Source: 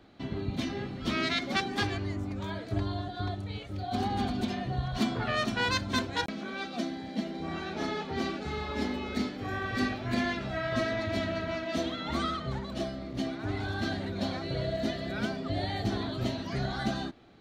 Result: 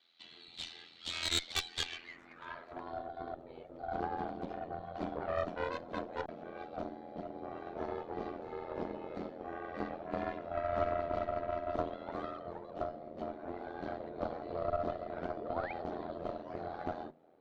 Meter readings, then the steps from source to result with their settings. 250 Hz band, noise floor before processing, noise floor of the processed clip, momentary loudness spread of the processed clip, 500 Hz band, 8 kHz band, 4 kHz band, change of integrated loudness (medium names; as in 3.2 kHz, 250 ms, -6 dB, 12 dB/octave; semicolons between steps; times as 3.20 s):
-12.5 dB, -41 dBFS, -56 dBFS, 10 LU, -2.5 dB, no reading, -6.5 dB, -7.0 dB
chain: hum notches 50/100/150/200 Hz; band-pass sweep 3.8 kHz -> 570 Hz, 1.75–3.11 s; ring modulator 42 Hz; Chebyshev shaper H 3 -13 dB, 4 -12 dB, 5 -11 dB, 7 -18 dB, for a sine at -21.5 dBFS; painted sound rise, 15.37–15.73 s, 300–2600 Hz -50 dBFS; trim +4.5 dB